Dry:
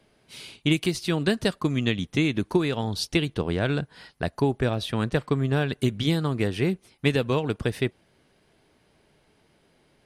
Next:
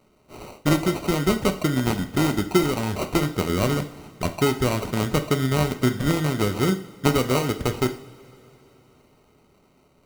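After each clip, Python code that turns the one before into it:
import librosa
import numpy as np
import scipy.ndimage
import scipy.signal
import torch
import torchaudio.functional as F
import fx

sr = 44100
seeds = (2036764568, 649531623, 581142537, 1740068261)

y = fx.sample_hold(x, sr, seeds[0], rate_hz=1700.0, jitter_pct=0)
y = fx.rev_double_slope(y, sr, seeds[1], early_s=0.49, late_s=4.0, knee_db=-21, drr_db=6.5)
y = y * 10.0 ** (2.0 / 20.0)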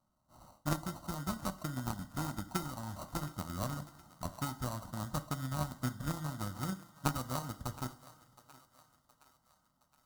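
y = fx.fixed_phaser(x, sr, hz=1000.0, stages=4)
y = fx.cheby_harmonics(y, sr, harmonics=(3,), levels_db=(-13,), full_scale_db=-10.0)
y = fx.echo_thinned(y, sr, ms=718, feedback_pct=52, hz=470.0, wet_db=-17.5)
y = y * 10.0 ** (-5.0 / 20.0)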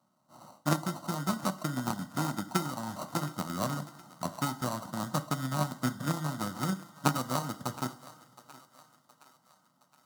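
y = scipy.signal.sosfilt(scipy.signal.butter(4, 140.0, 'highpass', fs=sr, output='sos'), x)
y = fx.high_shelf(y, sr, hz=11000.0, db=-5.0)
y = y * 10.0 ** (7.0 / 20.0)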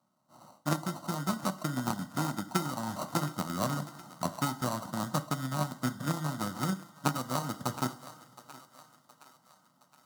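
y = fx.rider(x, sr, range_db=4, speed_s=0.5)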